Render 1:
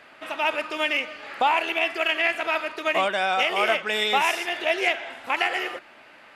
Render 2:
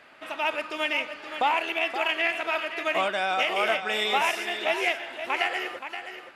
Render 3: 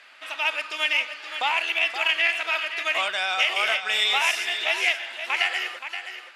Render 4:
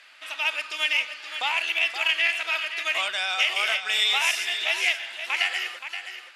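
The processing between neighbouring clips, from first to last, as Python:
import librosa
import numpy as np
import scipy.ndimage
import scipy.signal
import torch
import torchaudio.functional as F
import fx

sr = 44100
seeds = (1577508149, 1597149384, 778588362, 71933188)

y1 = x + 10.0 ** (-9.5 / 20.0) * np.pad(x, (int(524 * sr / 1000.0), 0))[:len(x)]
y1 = y1 * librosa.db_to_amplitude(-3.0)
y2 = fx.bandpass_q(y1, sr, hz=5000.0, q=0.54)
y2 = y2 * librosa.db_to_amplitude(7.5)
y3 = fx.high_shelf(y2, sr, hz=2000.0, db=8.0)
y3 = y3 * librosa.db_to_amplitude(-5.5)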